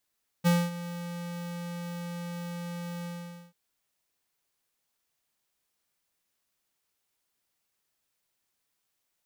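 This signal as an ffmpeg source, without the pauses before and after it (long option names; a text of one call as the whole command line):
ffmpeg -f lavfi -i "aevalsrc='0.0891*(2*lt(mod(173*t,1),0.5)-1)':duration=3.089:sample_rate=44100,afade=type=in:duration=0.028,afade=type=out:start_time=0.028:duration=0.234:silence=0.158,afade=type=out:start_time=2.61:duration=0.479" out.wav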